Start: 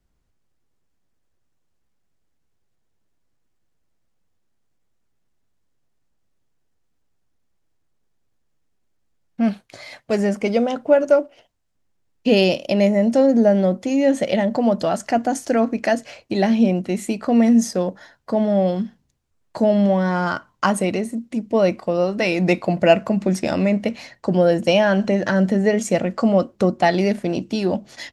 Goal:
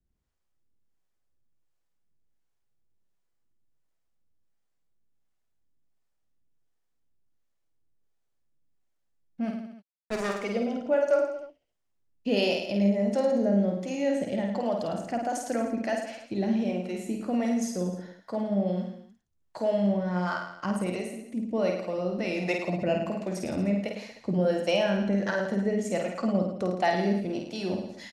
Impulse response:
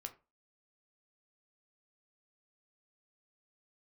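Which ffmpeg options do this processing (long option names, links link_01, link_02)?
-filter_complex "[0:a]asplit=3[link_01][link_02][link_03];[link_01]afade=type=out:start_time=9.5:duration=0.02[link_04];[link_02]acrusher=bits=2:mix=0:aa=0.5,afade=type=in:start_time=9.5:duration=0.02,afade=type=out:start_time=10.39:duration=0.02[link_05];[link_03]afade=type=in:start_time=10.39:duration=0.02[link_06];[link_04][link_05][link_06]amix=inputs=3:normalize=0,acrossover=split=430[link_07][link_08];[link_07]aeval=exprs='val(0)*(1-0.7/2+0.7/2*cos(2*PI*1.4*n/s))':channel_layout=same[link_09];[link_08]aeval=exprs='val(0)*(1-0.7/2-0.7/2*cos(2*PI*1.4*n/s))':channel_layout=same[link_10];[link_09][link_10]amix=inputs=2:normalize=0,aecho=1:1:50|105|165.5|232|305.3:0.631|0.398|0.251|0.158|0.1,volume=-8dB"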